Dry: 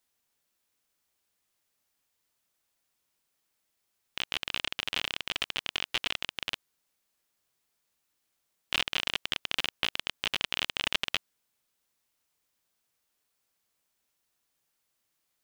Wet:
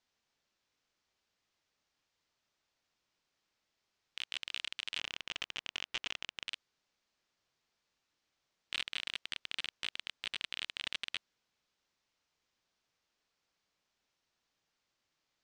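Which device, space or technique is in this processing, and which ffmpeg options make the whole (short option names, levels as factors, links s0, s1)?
synthesiser wavefolder: -filter_complex "[0:a]asettb=1/sr,asplit=3[s0][s1][s2];[s0]atrim=end=4.984[s3];[s1]atrim=start=4.98:end=6.48,asetpts=PTS-STARTPTS,afade=t=in:d=0.004:c=qsin,afade=t=out:st=1.496:d=0.004:c=qsin,lowpass=f=2000:p=1[s4];[s2]atrim=start=6.476[s5];[s3][s4]acrossfade=d=0.004:c1=hsin:c2=qsin[s6];[s6][s5]acrossfade=d=0.004:c1=qsin:c2=hsin,aeval=exprs='0.0841*(abs(mod(val(0)/0.0841+3,4)-2)-1)':c=same,lowpass=f=6000:w=0.5412,lowpass=f=6000:w=1.3066"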